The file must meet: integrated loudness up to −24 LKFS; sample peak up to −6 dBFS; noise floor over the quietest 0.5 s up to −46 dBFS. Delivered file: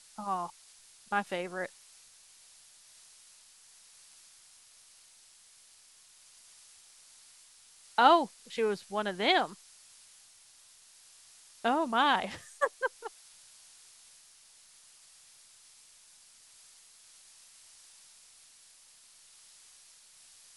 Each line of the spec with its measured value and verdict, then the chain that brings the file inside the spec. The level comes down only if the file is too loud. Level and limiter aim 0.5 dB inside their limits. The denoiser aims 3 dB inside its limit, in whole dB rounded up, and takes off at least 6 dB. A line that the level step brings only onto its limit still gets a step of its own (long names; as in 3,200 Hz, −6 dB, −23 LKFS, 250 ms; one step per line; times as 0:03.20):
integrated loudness −30.0 LKFS: in spec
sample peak −9.5 dBFS: in spec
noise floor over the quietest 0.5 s −59 dBFS: in spec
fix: no processing needed